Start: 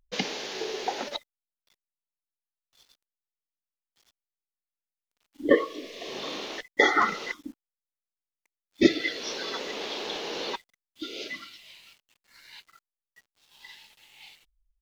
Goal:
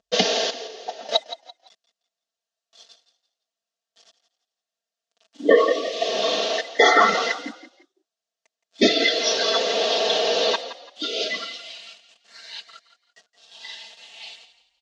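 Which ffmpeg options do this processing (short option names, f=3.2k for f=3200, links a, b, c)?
-filter_complex "[0:a]asettb=1/sr,asplit=3[a][b][c];[a]atrim=end=0.504[d];[b]atrim=start=0.5:end=1.09,asetpts=PTS-STARTPTS,afade=t=in:d=0.004:c=qsin,afade=t=out:st=0.586:d=0.004:c=qsin,agate=range=-18dB:threshold=-24dB:ratio=16:detection=peak[e];[c]atrim=start=1.086[f];[d][e]acrossfade=d=0.004:c1=hsin:c2=qsin[g];[g][f]acrossfade=d=0.004:c1=qsin:c2=hsin,highpass=260,equalizer=f=260:t=q:w=4:g=-8,equalizer=f=400:t=q:w=4:g=-4,equalizer=f=640:t=q:w=4:g=9,equalizer=f=940:t=q:w=4:g=-8,equalizer=f=1.4k:t=q:w=4:g=-4,equalizer=f=2.2k:t=q:w=4:g=-9,lowpass=f=6.9k:w=0.5412,lowpass=f=6.9k:w=1.3066,aecho=1:1:4.4:0.79,asplit=4[h][i][j][k];[i]adelay=169,afreqshift=30,volume=-13.5dB[l];[j]adelay=338,afreqshift=60,volume=-23.7dB[m];[k]adelay=507,afreqshift=90,volume=-33.8dB[n];[h][l][m][n]amix=inputs=4:normalize=0,alimiter=level_in=14.5dB:limit=-1dB:release=50:level=0:latency=1,volume=-3.5dB"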